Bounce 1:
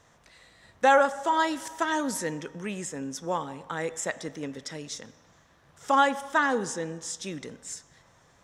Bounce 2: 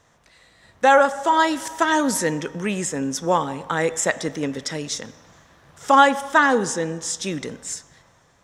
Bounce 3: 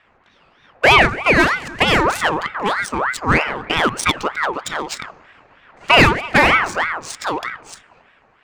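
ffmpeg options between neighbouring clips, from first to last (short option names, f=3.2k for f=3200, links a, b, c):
-af "dynaudnorm=f=150:g=11:m=9dB,volume=1dB"
-af "adynamicsmooth=sensitivity=2.5:basefreq=1.8k,aeval=exprs='0.841*sin(PI/2*1.58*val(0)/0.841)':c=same,aeval=exprs='val(0)*sin(2*PI*1200*n/s+1200*0.5/3.2*sin(2*PI*3.2*n/s))':c=same"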